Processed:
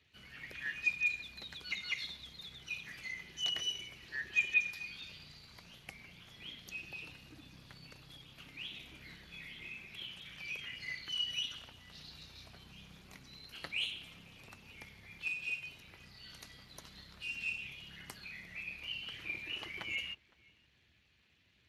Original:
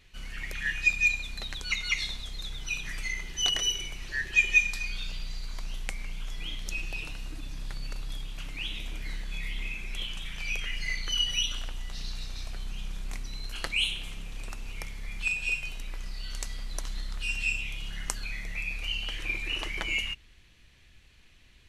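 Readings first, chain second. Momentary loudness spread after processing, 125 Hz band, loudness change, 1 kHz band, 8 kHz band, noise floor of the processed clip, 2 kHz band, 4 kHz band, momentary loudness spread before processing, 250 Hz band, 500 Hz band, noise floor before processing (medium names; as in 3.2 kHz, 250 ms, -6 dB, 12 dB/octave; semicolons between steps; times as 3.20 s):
20 LU, -15.0 dB, -7.5 dB, -10.5 dB, -16.0 dB, -70 dBFS, -8.5 dB, -8.5 dB, 15 LU, -9.0 dB, -9.5 dB, -56 dBFS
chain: on a send: filtered feedback delay 512 ms, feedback 18%, low-pass 1.4 kHz, level -23 dB; on the sum: trim -8.5 dB; Speex 24 kbps 32 kHz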